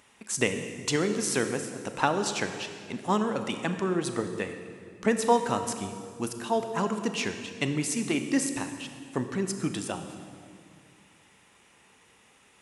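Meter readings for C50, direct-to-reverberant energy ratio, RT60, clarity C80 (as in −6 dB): 8.0 dB, 7.0 dB, 2.2 s, 9.0 dB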